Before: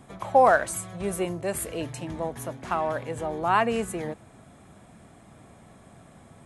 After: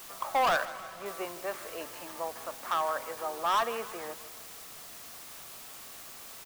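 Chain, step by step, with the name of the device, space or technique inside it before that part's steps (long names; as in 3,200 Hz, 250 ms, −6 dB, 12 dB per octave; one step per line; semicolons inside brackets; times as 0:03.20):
drive-through speaker (band-pass filter 540–3,000 Hz; parametric band 1,200 Hz +9 dB 0.54 octaves; hard clipping −19 dBFS, distortion −7 dB; white noise bed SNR 12 dB)
0:00.65–0:01.06: high-shelf EQ 5,500 Hz −9.5 dB
repeating echo 157 ms, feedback 55%, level −16.5 dB
level −4 dB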